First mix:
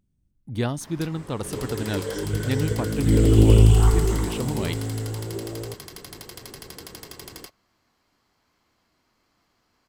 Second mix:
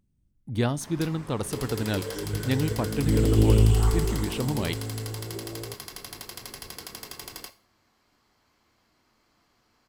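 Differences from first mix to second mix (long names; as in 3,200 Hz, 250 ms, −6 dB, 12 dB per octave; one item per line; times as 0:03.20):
second sound −5.5 dB
reverb: on, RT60 0.40 s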